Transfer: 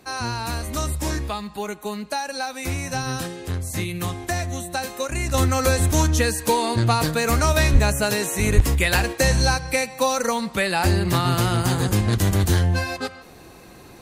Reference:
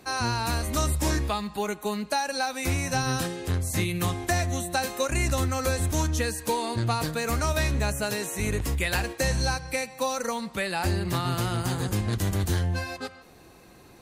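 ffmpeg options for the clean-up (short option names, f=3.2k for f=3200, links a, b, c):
-filter_complex "[0:a]asplit=3[a][b][c];[a]afade=t=out:st=7.72:d=0.02[d];[b]highpass=f=140:w=0.5412,highpass=f=140:w=1.3066,afade=t=in:st=7.72:d=0.02,afade=t=out:st=7.84:d=0.02[e];[c]afade=t=in:st=7.84:d=0.02[f];[d][e][f]amix=inputs=3:normalize=0,asplit=3[g][h][i];[g]afade=t=out:st=8.55:d=0.02[j];[h]highpass=f=140:w=0.5412,highpass=f=140:w=1.3066,afade=t=in:st=8.55:d=0.02,afade=t=out:st=8.67:d=0.02[k];[i]afade=t=in:st=8.67:d=0.02[l];[j][k][l]amix=inputs=3:normalize=0,asetnsamples=n=441:p=0,asendcmd='5.34 volume volume -7dB',volume=0dB"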